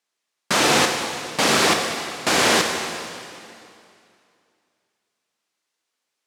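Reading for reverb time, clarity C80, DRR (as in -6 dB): 2.6 s, 5.0 dB, 3.0 dB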